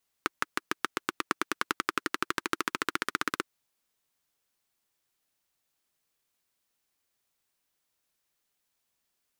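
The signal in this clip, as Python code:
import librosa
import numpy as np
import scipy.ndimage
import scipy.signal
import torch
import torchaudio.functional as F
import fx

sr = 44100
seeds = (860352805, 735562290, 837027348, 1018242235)

y = fx.engine_single_rev(sr, seeds[0], length_s=3.2, rpm=700, resonances_hz=(340.0, 1300.0), end_rpm=2000)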